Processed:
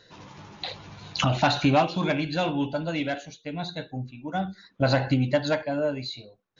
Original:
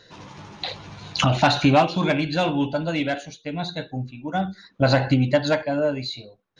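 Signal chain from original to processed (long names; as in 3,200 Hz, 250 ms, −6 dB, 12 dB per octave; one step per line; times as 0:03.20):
level −4 dB
WMA 128 kbit/s 16,000 Hz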